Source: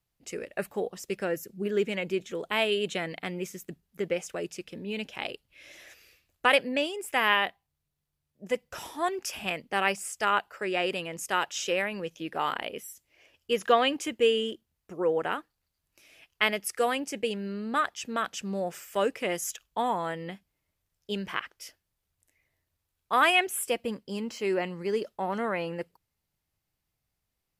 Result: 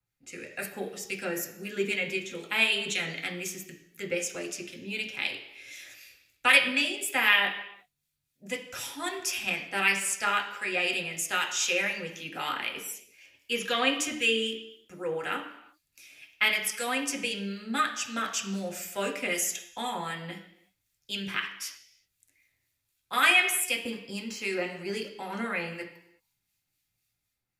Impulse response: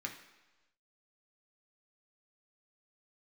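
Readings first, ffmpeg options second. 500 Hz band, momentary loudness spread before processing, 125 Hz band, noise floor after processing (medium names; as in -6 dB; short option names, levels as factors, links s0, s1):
-6.0 dB, 14 LU, -2.0 dB, -81 dBFS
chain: -filter_complex "[0:a]acrossover=split=1400[s0][s1];[s0]aeval=exprs='val(0)*(1-0.5/2+0.5/2*cos(2*PI*3.9*n/s))':c=same[s2];[s1]aeval=exprs='val(0)*(1-0.5/2-0.5/2*cos(2*PI*3.9*n/s))':c=same[s3];[s2][s3]amix=inputs=2:normalize=0[s4];[1:a]atrim=start_sample=2205,afade=t=out:st=0.43:d=0.01,atrim=end_sample=19404[s5];[s4][s5]afir=irnorm=-1:irlink=0,acrossover=split=130|1800|2300[s6][s7][s8][s9];[s9]dynaudnorm=f=120:g=7:m=3.98[s10];[s6][s7][s8][s10]amix=inputs=4:normalize=0"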